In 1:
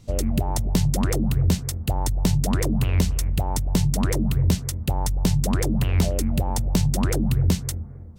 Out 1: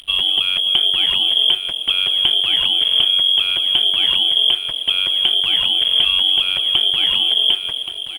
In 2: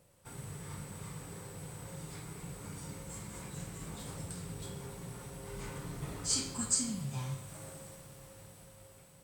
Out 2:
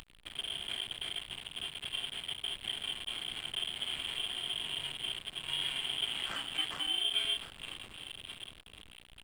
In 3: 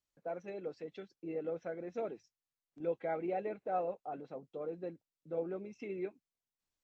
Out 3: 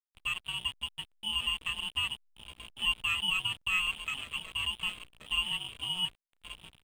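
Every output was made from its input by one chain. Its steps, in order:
samples in bit-reversed order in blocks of 16 samples
noise gate −45 dBFS, range −7 dB
parametric band 100 Hz −3.5 dB 1.3 octaves
in parallel at −2.5 dB: upward compression, threshold −24 dBFS
on the sum: hum with harmonics 60 Hz, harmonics 13, −46 dBFS −6 dB per octave
on a send: repeating echo 1,126 ms, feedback 23%, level −11 dB
on the sum: voice inversion scrambler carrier 3,300 Hz
slack as between gear wheels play −31 dBFS

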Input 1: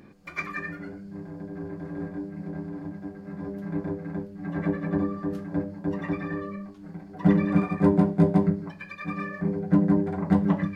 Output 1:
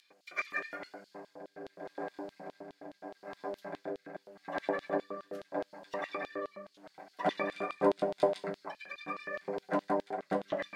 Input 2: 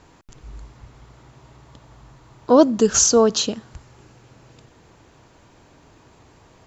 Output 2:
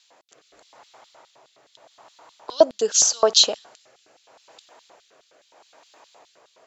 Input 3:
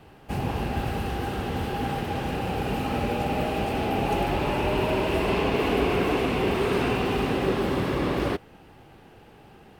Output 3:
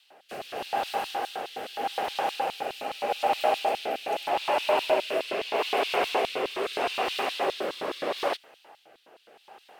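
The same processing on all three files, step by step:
rotating-speaker cabinet horn 0.8 Hz
auto-filter high-pass square 4.8 Hz 660–3,700 Hz
level +2 dB

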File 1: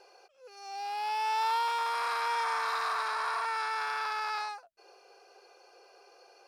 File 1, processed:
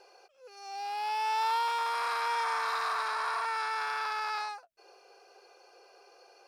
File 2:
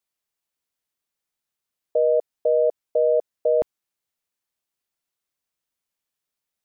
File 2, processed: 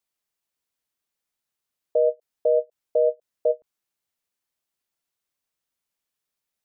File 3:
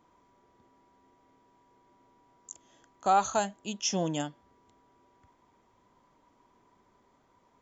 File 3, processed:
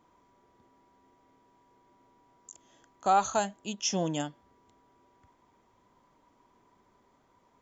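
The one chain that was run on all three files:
every ending faded ahead of time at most 520 dB per second

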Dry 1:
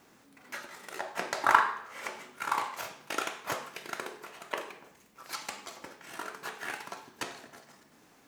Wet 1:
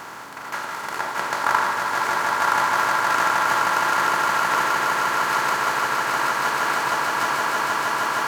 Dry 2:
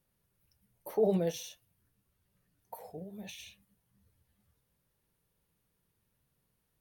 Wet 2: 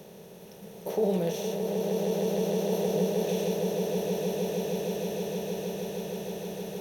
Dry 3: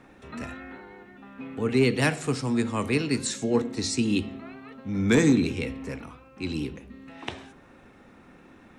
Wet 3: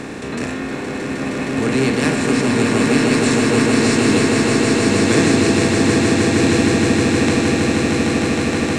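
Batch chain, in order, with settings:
compressor on every frequency bin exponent 0.4
echo that builds up and dies away 156 ms, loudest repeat 8, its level −5.5 dB
level −1 dB

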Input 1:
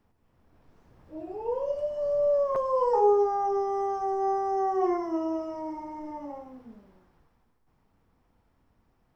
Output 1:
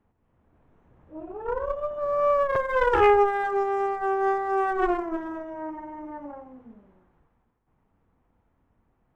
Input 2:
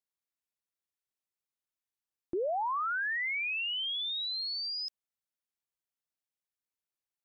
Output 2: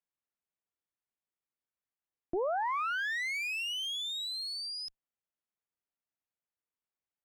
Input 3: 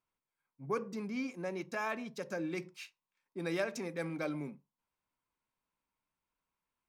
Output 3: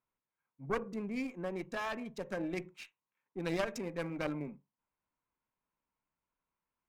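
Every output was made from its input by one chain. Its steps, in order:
adaptive Wiener filter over 9 samples
harmonic generator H 4 −6 dB, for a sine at −12 dBFS

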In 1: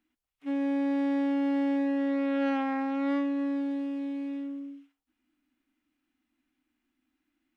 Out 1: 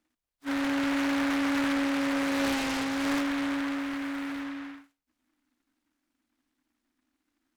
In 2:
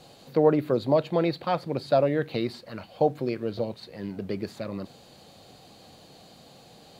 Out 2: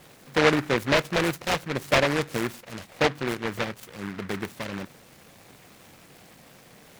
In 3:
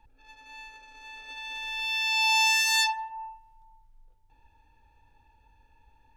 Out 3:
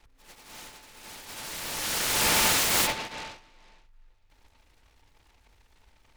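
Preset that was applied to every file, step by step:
short delay modulated by noise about 1,400 Hz, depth 0.24 ms

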